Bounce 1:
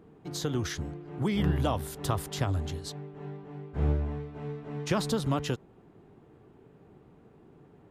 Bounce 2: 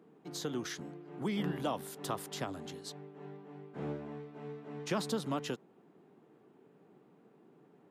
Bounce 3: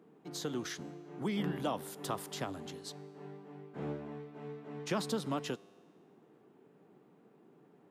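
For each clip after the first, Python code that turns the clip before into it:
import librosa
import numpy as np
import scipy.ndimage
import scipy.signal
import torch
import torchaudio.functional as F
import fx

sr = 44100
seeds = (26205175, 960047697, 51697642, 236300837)

y1 = scipy.signal.sosfilt(scipy.signal.butter(4, 170.0, 'highpass', fs=sr, output='sos'), x)
y1 = y1 * 10.0 ** (-5.0 / 20.0)
y2 = fx.comb_fb(y1, sr, f0_hz=100.0, decay_s=1.8, harmonics='all', damping=0.0, mix_pct=40)
y2 = y2 * 10.0 ** (4.0 / 20.0)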